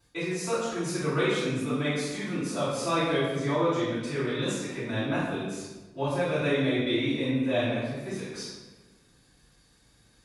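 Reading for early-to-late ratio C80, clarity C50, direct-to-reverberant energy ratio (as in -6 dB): 2.0 dB, -1.5 dB, -14.5 dB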